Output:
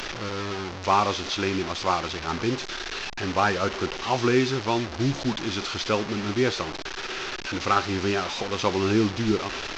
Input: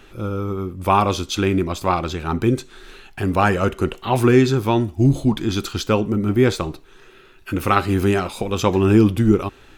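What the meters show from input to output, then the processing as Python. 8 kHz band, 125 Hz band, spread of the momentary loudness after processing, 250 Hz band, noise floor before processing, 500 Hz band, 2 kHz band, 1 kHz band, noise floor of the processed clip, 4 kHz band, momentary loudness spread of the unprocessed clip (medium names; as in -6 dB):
-2.0 dB, -11.0 dB, 9 LU, -8.5 dB, -48 dBFS, -6.5 dB, -1.0 dB, -4.0 dB, -36 dBFS, +1.5 dB, 11 LU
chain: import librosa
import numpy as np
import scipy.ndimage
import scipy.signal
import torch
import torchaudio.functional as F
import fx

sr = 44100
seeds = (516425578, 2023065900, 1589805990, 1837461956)

y = fx.delta_mod(x, sr, bps=32000, step_db=-21.0)
y = fx.low_shelf(y, sr, hz=320.0, db=-9.5)
y = F.gain(torch.from_numpy(y), -3.0).numpy()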